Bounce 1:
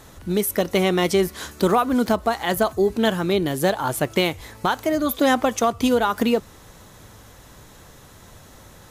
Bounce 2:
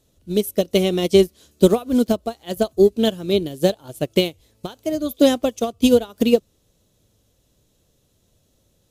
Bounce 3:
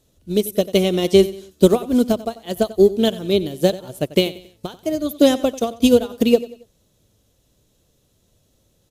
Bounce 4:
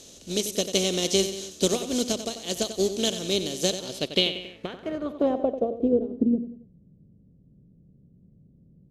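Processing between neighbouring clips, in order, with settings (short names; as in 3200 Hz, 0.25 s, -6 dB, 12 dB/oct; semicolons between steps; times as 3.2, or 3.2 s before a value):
band shelf 1300 Hz -12 dB; upward expander 2.5:1, over -31 dBFS; gain +8 dB
feedback echo 92 ms, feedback 39%, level -17 dB; gain +1 dB
per-bin compression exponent 0.6; pre-emphasis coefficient 0.8; low-pass sweep 6200 Hz -> 160 Hz, 3.77–6.69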